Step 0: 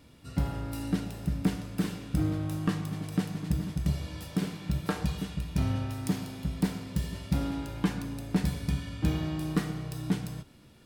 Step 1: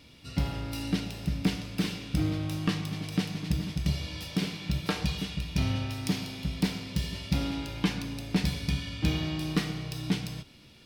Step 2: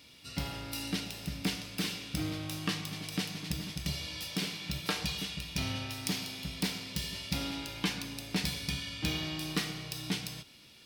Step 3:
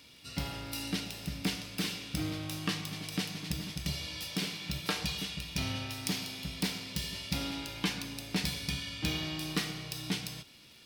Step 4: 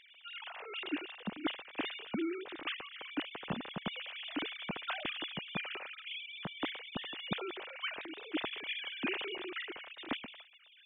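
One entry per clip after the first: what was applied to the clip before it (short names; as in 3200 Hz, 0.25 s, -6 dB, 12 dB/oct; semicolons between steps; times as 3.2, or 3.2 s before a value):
band shelf 3500 Hz +8.5 dB
tilt +2 dB/oct; gain -2.5 dB
crackle 110/s -48 dBFS
sine-wave speech; gain -4.5 dB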